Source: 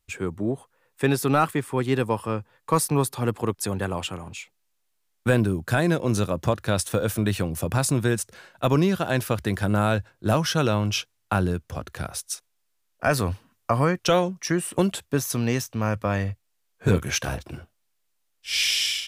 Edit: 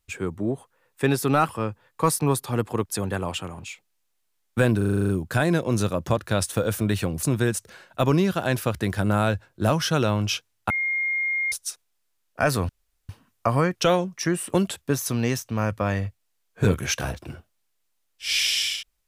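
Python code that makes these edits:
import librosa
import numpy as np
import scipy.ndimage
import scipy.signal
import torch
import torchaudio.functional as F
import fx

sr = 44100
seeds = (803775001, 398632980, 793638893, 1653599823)

y = fx.edit(x, sr, fx.cut(start_s=1.49, length_s=0.69),
    fx.stutter(start_s=5.46, slice_s=0.04, count=9),
    fx.cut(start_s=7.6, length_s=0.27),
    fx.bleep(start_s=11.34, length_s=0.82, hz=2130.0, db=-22.0),
    fx.insert_room_tone(at_s=13.33, length_s=0.4), tone=tone)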